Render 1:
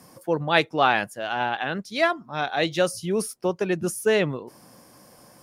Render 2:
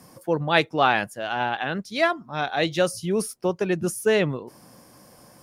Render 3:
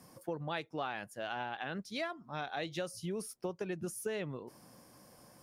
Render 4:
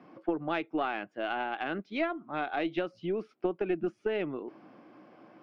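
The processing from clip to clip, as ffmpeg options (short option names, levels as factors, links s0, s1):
-af "lowshelf=f=150:g=4"
-af "acompressor=threshold=0.0447:ratio=6,volume=0.398"
-af "highpass=290,equalizer=f=320:t=q:w=4:g=7,equalizer=f=510:t=q:w=4:g=-7,equalizer=f=960:t=q:w=4:g=-7,equalizer=f=1800:t=q:w=4:g=-7,lowpass=f=2600:w=0.5412,lowpass=f=2600:w=1.3066,aeval=exprs='0.0447*(cos(1*acos(clip(val(0)/0.0447,-1,1)))-cos(1*PI/2))+0.00562*(cos(2*acos(clip(val(0)/0.0447,-1,1)))-cos(2*PI/2))+0.000355*(cos(4*acos(clip(val(0)/0.0447,-1,1)))-cos(4*PI/2))':c=same,volume=2.82"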